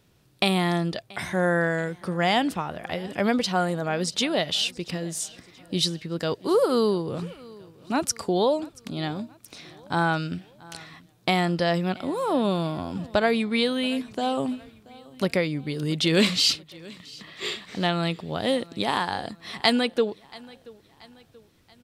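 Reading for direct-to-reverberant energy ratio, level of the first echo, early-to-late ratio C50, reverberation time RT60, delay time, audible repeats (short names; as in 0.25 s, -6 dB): none, -22.5 dB, none, none, 0.681 s, 2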